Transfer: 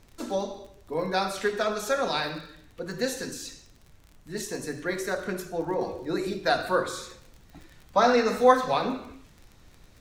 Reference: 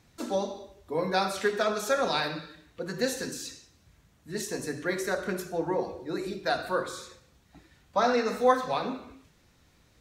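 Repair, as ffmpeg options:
ffmpeg -i in.wav -af "adeclick=threshold=4,agate=range=-21dB:threshold=-46dB,asetnsamples=nb_out_samples=441:pad=0,asendcmd='5.81 volume volume -4dB',volume=0dB" out.wav

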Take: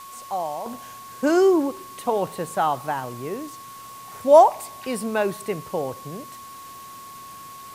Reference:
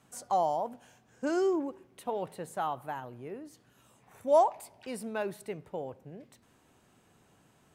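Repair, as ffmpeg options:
ffmpeg -i in.wav -af "bandreject=frequency=1100:width=30,afwtdn=0.005,asetnsamples=nb_out_samples=441:pad=0,asendcmd='0.66 volume volume -11dB',volume=0dB" out.wav

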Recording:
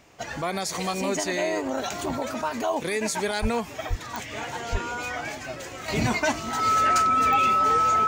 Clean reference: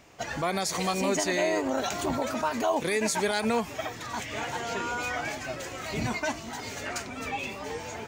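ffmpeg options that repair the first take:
ffmpeg -i in.wav -filter_complex "[0:a]adeclick=threshold=4,bandreject=frequency=1300:width=30,asplit=3[link_01][link_02][link_03];[link_01]afade=type=out:start_time=3.41:duration=0.02[link_04];[link_02]highpass=frequency=140:width=0.5412,highpass=frequency=140:width=1.3066,afade=type=in:start_time=3.41:duration=0.02,afade=type=out:start_time=3.53:duration=0.02[link_05];[link_03]afade=type=in:start_time=3.53:duration=0.02[link_06];[link_04][link_05][link_06]amix=inputs=3:normalize=0,asplit=3[link_07][link_08][link_09];[link_07]afade=type=out:start_time=3.89:duration=0.02[link_10];[link_08]highpass=frequency=140:width=0.5412,highpass=frequency=140:width=1.3066,afade=type=in:start_time=3.89:duration=0.02,afade=type=out:start_time=4.01:duration=0.02[link_11];[link_09]afade=type=in:start_time=4.01:duration=0.02[link_12];[link_10][link_11][link_12]amix=inputs=3:normalize=0,asplit=3[link_13][link_14][link_15];[link_13]afade=type=out:start_time=4.71:duration=0.02[link_16];[link_14]highpass=frequency=140:width=0.5412,highpass=frequency=140:width=1.3066,afade=type=in:start_time=4.71:duration=0.02,afade=type=out:start_time=4.83:duration=0.02[link_17];[link_15]afade=type=in:start_time=4.83:duration=0.02[link_18];[link_16][link_17][link_18]amix=inputs=3:normalize=0,asetnsamples=nb_out_samples=441:pad=0,asendcmd='5.88 volume volume -6dB',volume=0dB" out.wav

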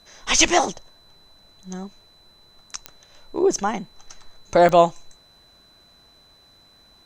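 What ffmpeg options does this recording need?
ffmpeg -i in.wav -af "adeclick=threshold=4,bandreject=frequency=4000:width=30" out.wav

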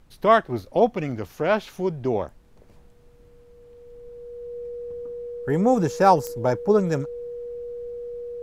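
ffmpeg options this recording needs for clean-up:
ffmpeg -i in.wav -af "adeclick=threshold=4,bandreject=frequency=480:width=30,agate=range=-21dB:threshold=-43dB" out.wav

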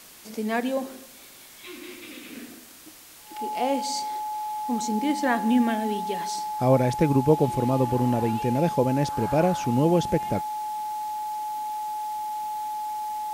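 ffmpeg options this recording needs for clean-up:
ffmpeg -i in.wav -af "bandreject=frequency=850:width=30,afwtdn=0.0045" out.wav

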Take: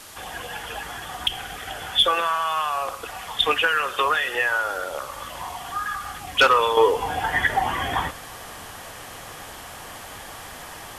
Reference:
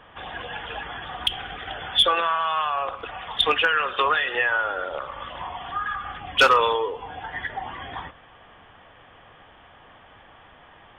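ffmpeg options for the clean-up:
ffmpeg -i in.wav -af "afwtdn=0.0079,asetnsamples=nb_out_samples=441:pad=0,asendcmd='6.77 volume volume -10dB',volume=0dB" out.wav

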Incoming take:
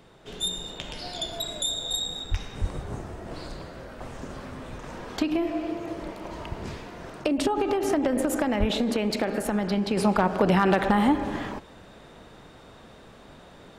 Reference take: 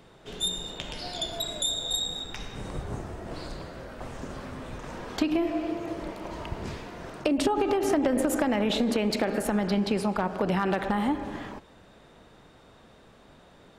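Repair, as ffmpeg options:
ffmpeg -i in.wav -filter_complex "[0:a]asplit=3[link_01][link_02][link_03];[link_01]afade=type=out:start_time=2.3:duration=0.02[link_04];[link_02]highpass=frequency=140:width=0.5412,highpass=frequency=140:width=1.3066,afade=type=in:start_time=2.3:duration=0.02,afade=type=out:start_time=2.42:duration=0.02[link_05];[link_03]afade=type=in:start_time=2.42:duration=0.02[link_06];[link_04][link_05][link_06]amix=inputs=3:normalize=0,asplit=3[link_07][link_08][link_09];[link_07]afade=type=out:start_time=2.6:duration=0.02[link_10];[link_08]highpass=frequency=140:width=0.5412,highpass=frequency=140:width=1.3066,afade=type=in:start_time=2.6:duration=0.02,afade=type=out:start_time=2.72:duration=0.02[link_11];[link_09]afade=type=in:start_time=2.72:duration=0.02[link_12];[link_10][link_11][link_12]amix=inputs=3:normalize=0,asplit=3[link_13][link_14][link_15];[link_13]afade=type=out:start_time=8.59:duration=0.02[link_16];[link_14]highpass=frequency=140:width=0.5412,highpass=frequency=140:width=1.3066,afade=type=in:start_time=8.59:duration=0.02,afade=type=out:start_time=8.71:duration=0.02[link_17];[link_15]afade=type=in:start_time=8.71:duration=0.02[link_18];[link_16][link_17][link_18]amix=inputs=3:normalize=0,asetnsamples=nb_out_samples=441:pad=0,asendcmd='9.97 volume volume -5.5dB',volume=0dB" out.wav

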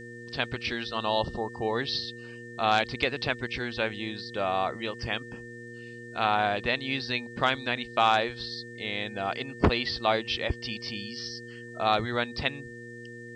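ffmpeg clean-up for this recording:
ffmpeg -i in.wav -af "bandreject=frequency=118.7:width_type=h:width=4,bandreject=frequency=237.4:width_type=h:width=4,bandreject=frequency=356.1:width_type=h:width=4,bandreject=frequency=474.8:width_type=h:width=4,bandreject=frequency=1800:width=30,agate=range=-21dB:threshold=-35dB" out.wav

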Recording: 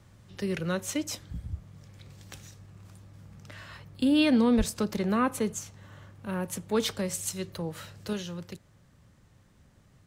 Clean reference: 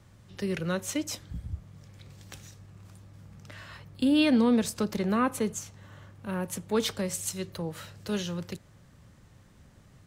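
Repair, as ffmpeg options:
ffmpeg -i in.wav -filter_complex "[0:a]asplit=3[link_01][link_02][link_03];[link_01]afade=type=out:start_time=4.57:duration=0.02[link_04];[link_02]highpass=frequency=140:width=0.5412,highpass=frequency=140:width=1.3066,afade=type=in:start_time=4.57:duration=0.02,afade=type=out:start_time=4.69:duration=0.02[link_05];[link_03]afade=type=in:start_time=4.69:duration=0.02[link_06];[link_04][link_05][link_06]amix=inputs=3:normalize=0,asetnsamples=nb_out_samples=441:pad=0,asendcmd='8.13 volume volume 4dB',volume=0dB" out.wav

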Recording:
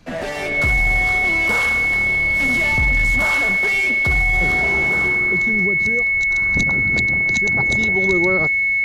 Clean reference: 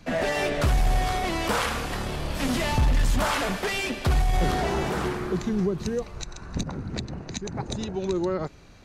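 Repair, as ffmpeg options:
ffmpeg -i in.wav -af "bandreject=frequency=2200:width=30,asetnsamples=nb_out_samples=441:pad=0,asendcmd='6.3 volume volume -6dB',volume=0dB" out.wav

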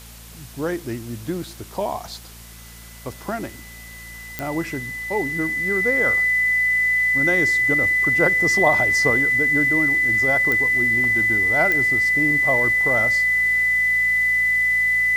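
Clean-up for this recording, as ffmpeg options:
ffmpeg -i in.wav -af "adeclick=threshold=4,bandreject=frequency=57:width_type=h:width=4,bandreject=frequency=114:width_type=h:width=4,bandreject=frequency=171:width_type=h:width=4,bandreject=frequency=228:width_type=h:width=4,bandreject=frequency=2000:width=30,afwtdn=0.0071" out.wav

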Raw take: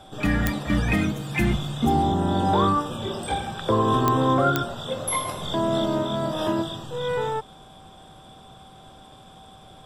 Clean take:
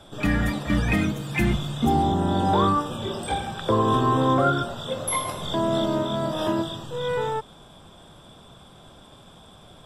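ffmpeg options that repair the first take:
ffmpeg -i in.wav -af "adeclick=threshold=4,bandreject=frequency=770:width=30" out.wav

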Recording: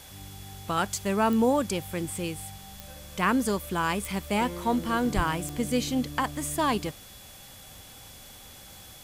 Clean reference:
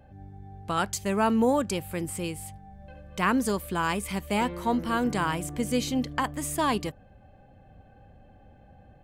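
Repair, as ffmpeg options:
ffmpeg -i in.wav -filter_complex "[0:a]adeclick=threshold=4,bandreject=frequency=3400:width=30,asplit=3[link_01][link_02][link_03];[link_01]afade=type=out:start_time=5.15:duration=0.02[link_04];[link_02]highpass=frequency=140:width=0.5412,highpass=frequency=140:width=1.3066,afade=type=in:start_time=5.15:duration=0.02,afade=type=out:start_time=5.27:duration=0.02[link_05];[link_03]afade=type=in:start_time=5.27:duration=0.02[link_06];[link_04][link_05][link_06]amix=inputs=3:normalize=0,afwtdn=0.004" out.wav

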